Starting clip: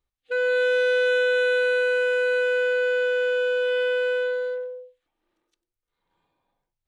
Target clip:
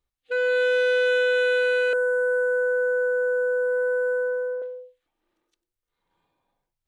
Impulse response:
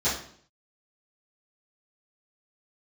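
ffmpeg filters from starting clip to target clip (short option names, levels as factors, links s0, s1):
-filter_complex "[0:a]asettb=1/sr,asplit=3[s0][s1][s2];[s0]atrim=end=1.934[s3];[s1]atrim=start=1.93:end=4.62,asetpts=PTS-STARTPTS,afade=t=in:d=0.004:c=qsin,afade=t=out:st=2.686:d=0.004:c=qsin,asuperstop=centerf=3600:order=12:qfactor=0.59[s4];[s2]atrim=start=4.616[s5];[s3][s4]acrossfade=d=0.004:c1=hsin:c2=qsin[s6];[s6][s5]acrossfade=d=0.004:c1=qsin:c2=hsin"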